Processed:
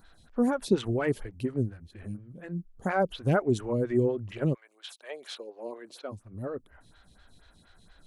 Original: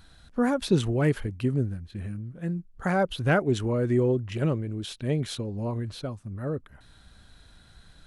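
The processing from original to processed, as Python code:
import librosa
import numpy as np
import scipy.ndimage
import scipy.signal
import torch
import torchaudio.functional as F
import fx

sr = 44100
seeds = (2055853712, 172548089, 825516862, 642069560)

y = fx.highpass(x, sr, hz=fx.line((4.53, 970.0), (6.11, 250.0)), slope=24, at=(4.53, 6.11), fade=0.02)
y = fx.stagger_phaser(y, sr, hz=4.2)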